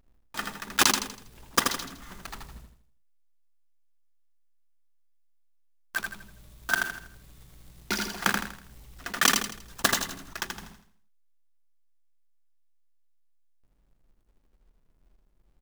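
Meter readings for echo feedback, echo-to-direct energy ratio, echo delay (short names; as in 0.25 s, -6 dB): 38%, -4.0 dB, 81 ms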